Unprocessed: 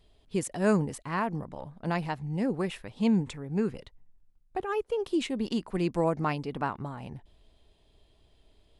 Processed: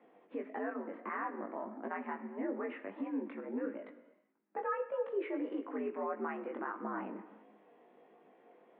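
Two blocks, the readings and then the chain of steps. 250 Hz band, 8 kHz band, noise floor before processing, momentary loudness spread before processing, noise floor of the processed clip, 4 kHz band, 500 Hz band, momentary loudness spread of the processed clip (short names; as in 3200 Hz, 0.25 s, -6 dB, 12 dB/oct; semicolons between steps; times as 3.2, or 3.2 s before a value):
-10.5 dB, under -35 dB, -65 dBFS, 12 LU, -66 dBFS, under -20 dB, -7.0 dB, 8 LU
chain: dynamic EQ 1500 Hz, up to +6 dB, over -45 dBFS, Q 1.1; compressor 6:1, threshold -40 dBFS, peak gain reduction 20 dB; limiter -36 dBFS, peak gain reduction 8.5 dB; mistuned SSB +74 Hz 170–2100 Hz; non-linear reverb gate 0.46 s falling, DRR 10.5 dB; chorus 1.6 Hz, delay 18 ms, depth 3.4 ms; gain +10.5 dB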